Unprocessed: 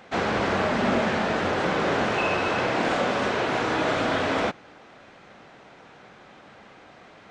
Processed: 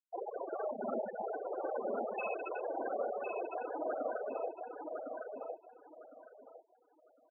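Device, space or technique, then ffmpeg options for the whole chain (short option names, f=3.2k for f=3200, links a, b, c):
crystal radio: -filter_complex "[0:a]asettb=1/sr,asplit=3[a][b][c];[a]atrim=end=2.364[d];[b]atrim=start=2.36:end=3.06,asetpts=PTS-STARTPTS,afade=t=in:d=0.004:c=qsin,afade=t=out:st=0.696:d=0.004:c=qsin,bandreject=f=126.8:t=h:w=4,bandreject=f=253.6:t=h:w=4,bandreject=f=380.4:t=h:w=4,bandreject=f=507.2:t=h:w=4,bandreject=f=634:t=h:w=4,bandreject=f=760.8:t=h:w=4,bandreject=f=887.6:t=h:w=4,bandreject=f=1.0144k:t=h:w=4,bandreject=f=1.1412k:t=h:w=4,bandreject=f=1.268k:t=h:w=4,bandreject=f=1.3948k:t=h:w=4,bandreject=f=1.5216k:t=h:w=4,bandreject=f=1.6484k:t=h:w=4,bandreject=f=1.7752k:t=h:w=4,bandreject=f=1.902k:t=h:w=4,bandreject=f=2.0288k:t=h:w=4,bandreject=f=2.1556k:t=h:w=4,bandreject=f=2.2824k:t=h:w=4,bandreject=f=2.4092k:t=h:w=4,bandreject=f=2.536k:t=h:w=4,bandreject=f=2.6628k:t=h:w=4,bandreject=f=2.7896k:t=h:w=4,bandreject=f=2.9164k:t=h:w=4,bandreject=f=3.0432k:t=h:w=4,bandreject=f=3.17k:t=h:w=4,bandreject=f=3.2968k:t=h:w=4,bandreject=f=3.4236k:t=h:w=4,bandreject=f=3.5504k:t=h:w=4,bandreject=f=3.6772k:t=h:w=4,bandreject=f=3.804k:t=h:w=4,bandreject=f=3.9308k:t=h:w=4,bandreject=f=4.0576k:t=h:w=4,bandreject=f=4.1844k:t=h:w=4,bandreject=f=4.3112k:t=h:w=4[e];[c]atrim=start=3.056[f];[d][e]acrossfade=d=0.004:c1=hsin:c2=qsin[g];[g][f]acrossfade=d=0.004:c1=qsin:c2=hsin,highpass=330,lowpass=3.2k,aeval=exprs='if(lt(val(0),0),0.708*val(0),val(0))':c=same,afftfilt=real='re*gte(hypot(re,im),0.178)':imag='im*gte(hypot(re,im),0.178)':win_size=1024:overlap=0.75,asplit=2[h][i];[i]adelay=1057,lowpass=f=3.2k:p=1,volume=-4dB,asplit=2[j][k];[k]adelay=1057,lowpass=f=3.2k:p=1,volume=0.25,asplit=2[l][m];[m]adelay=1057,lowpass=f=3.2k:p=1,volume=0.25[n];[h][j][l][n]amix=inputs=4:normalize=0,volume=-7dB"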